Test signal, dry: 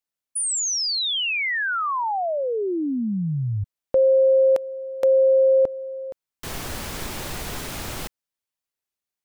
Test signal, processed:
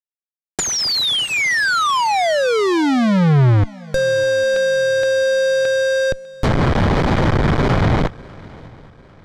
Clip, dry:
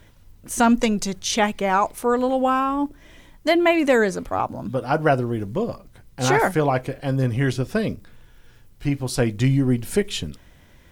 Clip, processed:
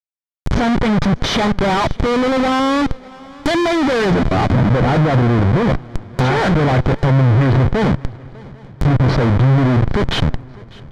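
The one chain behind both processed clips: steep low-pass 5.9 kHz 36 dB/octave; Schmitt trigger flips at -33.5 dBFS; peaking EQ 130 Hz +6 dB 1.1 oct; band-stop 2.7 kHz, Q 8.2; low-pass that closes with the level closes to 2.4 kHz, closed at -17.5 dBFS; shuffle delay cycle 798 ms, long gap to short 3:1, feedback 40%, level -23 dB; trim +7 dB

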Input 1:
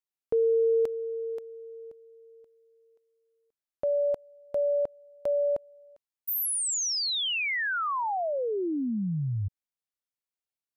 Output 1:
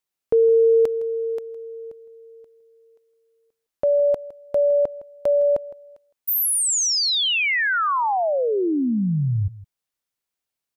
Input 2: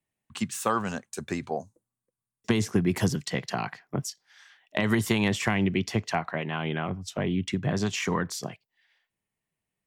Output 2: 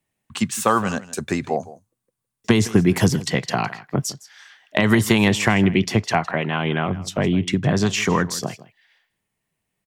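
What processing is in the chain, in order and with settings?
delay 161 ms -18 dB; trim +8 dB

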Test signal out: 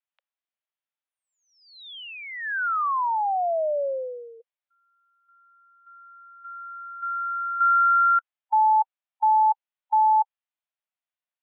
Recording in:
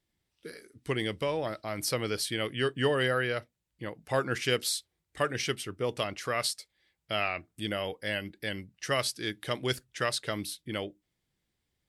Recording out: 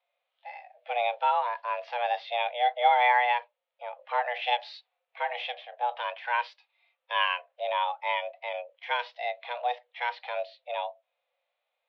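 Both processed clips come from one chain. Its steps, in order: harmonic-percussive split percussive -15 dB; mistuned SSB +360 Hz 180–3200 Hz; trim +8 dB

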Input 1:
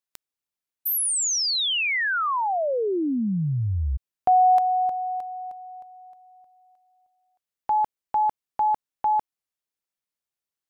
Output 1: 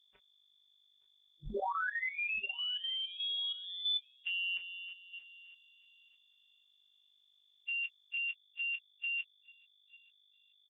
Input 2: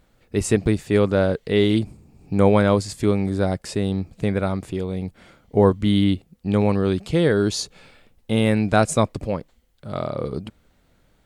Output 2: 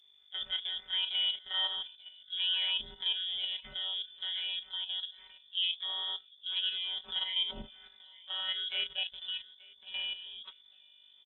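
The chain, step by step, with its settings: frequency axis rescaled in octaves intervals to 90%; robot voice 182 Hz; doubling 20 ms -3.5 dB; feedback delay 875 ms, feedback 22%, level -24 dB; level held to a coarse grid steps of 10 dB; hum 50 Hz, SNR 31 dB; peaking EQ 310 Hz -3 dB 2.5 oct; peak limiter -18 dBFS; frequency inversion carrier 3.5 kHz; trim -4 dB; Opus 20 kbps 48 kHz

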